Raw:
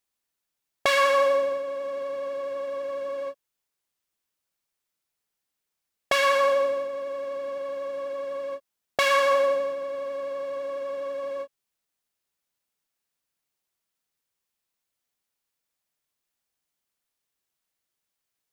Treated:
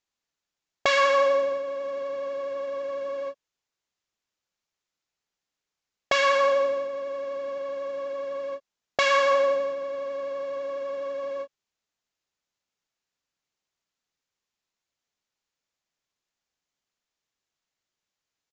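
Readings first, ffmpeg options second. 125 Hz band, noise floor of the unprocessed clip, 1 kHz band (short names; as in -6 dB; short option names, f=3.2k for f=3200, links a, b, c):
n/a, -84 dBFS, 0.0 dB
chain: -af "aresample=16000,aresample=44100"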